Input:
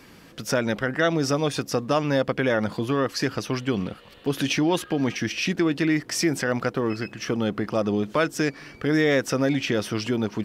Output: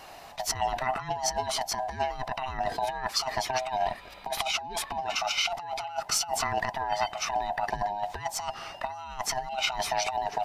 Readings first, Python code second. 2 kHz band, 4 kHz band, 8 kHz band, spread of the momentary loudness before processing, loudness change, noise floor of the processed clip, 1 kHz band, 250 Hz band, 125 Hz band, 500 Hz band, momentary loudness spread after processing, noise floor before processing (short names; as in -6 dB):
-6.5 dB, 0.0 dB, +2.0 dB, 6 LU, -5.5 dB, -46 dBFS, +4.0 dB, -24.5 dB, -16.0 dB, -9.5 dB, 7 LU, -49 dBFS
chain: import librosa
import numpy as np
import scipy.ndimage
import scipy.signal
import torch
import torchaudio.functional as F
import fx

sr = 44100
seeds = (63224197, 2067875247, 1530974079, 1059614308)

y = fx.band_swap(x, sr, width_hz=500)
y = fx.over_compress(y, sr, threshold_db=-27.0, ratio=-0.5)
y = fx.attack_slew(y, sr, db_per_s=530.0)
y = y * 10.0 ** (-2.0 / 20.0)